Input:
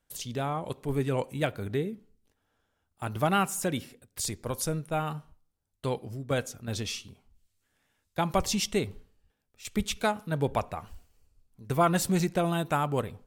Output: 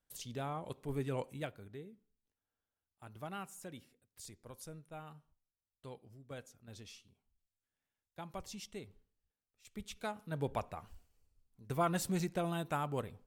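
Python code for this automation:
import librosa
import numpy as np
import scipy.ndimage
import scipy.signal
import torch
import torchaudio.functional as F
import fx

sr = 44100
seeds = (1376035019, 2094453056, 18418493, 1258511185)

y = fx.gain(x, sr, db=fx.line((1.28, -9.0), (1.69, -19.0), (9.66, -19.0), (10.4, -9.0)))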